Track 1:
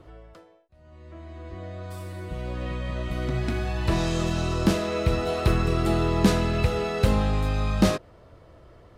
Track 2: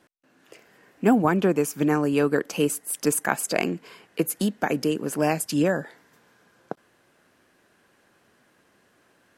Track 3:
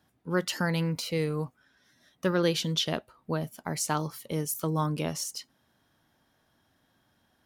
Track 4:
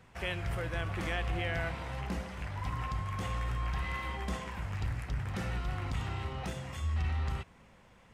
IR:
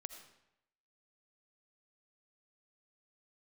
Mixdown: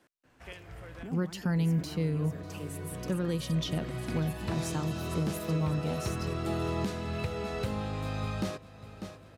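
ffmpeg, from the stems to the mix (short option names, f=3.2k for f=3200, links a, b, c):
-filter_complex "[0:a]highpass=f=73:w=0.5412,highpass=f=73:w=1.3066,adelay=600,volume=-6dB,asplit=2[a][b];[b]volume=-16dB[c];[1:a]acrossover=split=140[d][e];[e]acompressor=threshold=-34dB:ratio=6[f];[d][f]amix=inputs=2:normalize=0,alimiter=level_in=5.5dB:limit=-24dB:level=0:latency=1,volume=-5.5dB,volume=-5.5dB,asplit=3[g][h][i];[h]volume=-5.5dB[j];[2:a]equalizer=f=140:w=0.59:g=13,adelay=850,volume=-6.5dB,asplit=2[k][l];[l]volume=-20dB[m];[3:a]adelay=250,volume=-8.5dB[n];[i]apad=whole_len=369719[o];[n][o]sidechaincompress=threshold=-54dB:ratio=3:attack=24:release=1230[p];[c][j][m]amix=inputs=3:normalize=0,aecho=0:1:596|1192|1788|2384|2980|3576:1|0.45|0.202|0.0911|0.041|0.0185[q];[a][g][k][p][q]amix=inputs=5:normalize=0,alimiter=limit=-21.5dB:level=0:latency=1:release=497"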